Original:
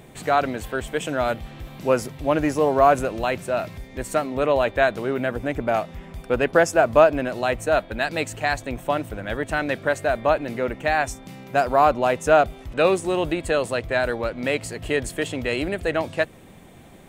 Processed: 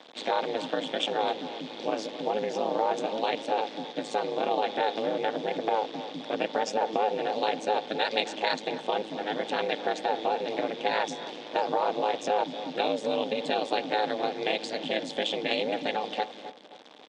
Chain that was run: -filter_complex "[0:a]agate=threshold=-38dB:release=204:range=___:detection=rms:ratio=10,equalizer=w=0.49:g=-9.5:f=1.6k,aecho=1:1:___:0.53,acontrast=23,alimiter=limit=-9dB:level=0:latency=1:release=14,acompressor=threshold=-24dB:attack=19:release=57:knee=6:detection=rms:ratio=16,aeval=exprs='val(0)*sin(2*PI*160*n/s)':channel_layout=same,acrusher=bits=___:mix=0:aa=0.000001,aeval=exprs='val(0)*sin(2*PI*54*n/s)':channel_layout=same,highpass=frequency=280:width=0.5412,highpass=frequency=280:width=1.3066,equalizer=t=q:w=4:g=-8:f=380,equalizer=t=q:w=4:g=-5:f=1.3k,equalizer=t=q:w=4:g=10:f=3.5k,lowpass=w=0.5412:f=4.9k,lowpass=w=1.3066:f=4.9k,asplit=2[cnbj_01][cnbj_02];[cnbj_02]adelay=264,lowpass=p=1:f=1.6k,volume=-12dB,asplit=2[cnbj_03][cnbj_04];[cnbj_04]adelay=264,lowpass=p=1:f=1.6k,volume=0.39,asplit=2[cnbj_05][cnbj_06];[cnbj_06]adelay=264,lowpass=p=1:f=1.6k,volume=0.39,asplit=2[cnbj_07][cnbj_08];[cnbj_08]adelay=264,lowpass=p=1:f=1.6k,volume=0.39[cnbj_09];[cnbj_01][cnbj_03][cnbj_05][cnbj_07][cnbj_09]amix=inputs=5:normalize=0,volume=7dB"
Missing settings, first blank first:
-7dB, 3.1, 7